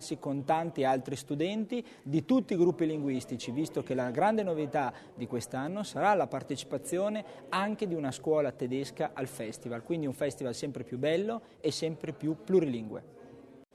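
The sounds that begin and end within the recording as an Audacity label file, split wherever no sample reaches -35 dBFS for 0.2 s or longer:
2.060000	4.900000	sound
5.210000	7.210000	sound
7.520000	11.380000	sound
11.640000	12.980000	sound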